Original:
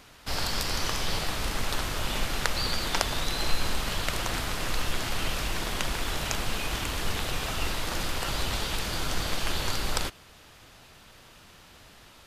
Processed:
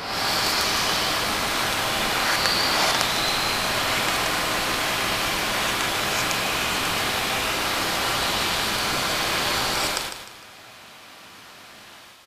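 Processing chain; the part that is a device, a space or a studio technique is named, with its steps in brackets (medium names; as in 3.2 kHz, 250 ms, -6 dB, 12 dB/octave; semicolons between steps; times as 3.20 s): ghost voice (reverse; reverberation RT60 1.5 s, pre-delay 99 ms, DRR -6.5 dB; reverse; high-pass 460 Hz 6 dB/octave); feedback delay 152 ms, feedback 36%, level -9 dB; trim +2.5 dB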